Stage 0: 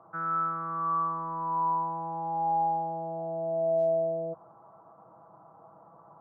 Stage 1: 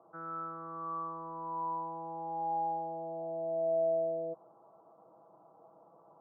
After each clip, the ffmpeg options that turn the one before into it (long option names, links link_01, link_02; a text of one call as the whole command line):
ffmpeg -i in.wav -af "bandpass=frequency=430:width_type=q:width=1.2:csg=0,volume=-1dB" out.wav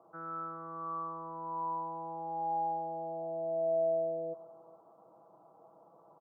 ffmpeg -i in.wav -af "aecho=1:1:415:0.0891" out.wav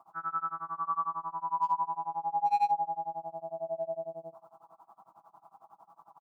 ffmpeg -i in.wav -af "firequalizer=gain_entry='entry(210,0);entry(500,-15);entry(800,11)':delay=0.05:min_phase=1,asoftclip=type=hard:threshold=-20dB,tremolo=f=11:d=0.96" out.wav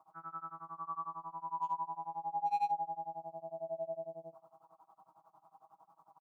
ffmpeg -i in.wav -af "aecho=1:1:6.4:0.65,volume=-7.5dB" out.wav